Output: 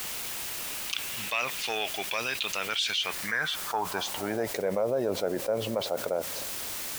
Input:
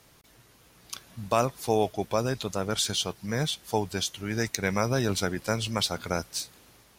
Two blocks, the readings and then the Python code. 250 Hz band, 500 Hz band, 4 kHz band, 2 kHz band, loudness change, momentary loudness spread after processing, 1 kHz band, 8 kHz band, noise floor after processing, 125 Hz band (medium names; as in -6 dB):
-6.0 dB, -1.0 dB, +1.0 dB, +4.0 dB, -1.5 dB, 5 LU, -2.5 dB, -1.5 dB, -36 dBFS, -12.5 dB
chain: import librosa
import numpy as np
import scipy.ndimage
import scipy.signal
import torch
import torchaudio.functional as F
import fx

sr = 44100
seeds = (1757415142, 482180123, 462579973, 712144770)

y = fx.fade_out_tail(x, sr, length_s=1.28)
y = fx.leveller(y, sr, passes=1)
y = fx.filter_sweep_bandpass(y, sr, from_hz=2700.0, to_hz=560.0, start_s=2.83, end_s=4.54, q=3.5)
y = fx.quant_dither(y, sr, seeds[0], bits=10, dither='triangular')
y = fx.env_flatten(y, sr, amount_pct=70)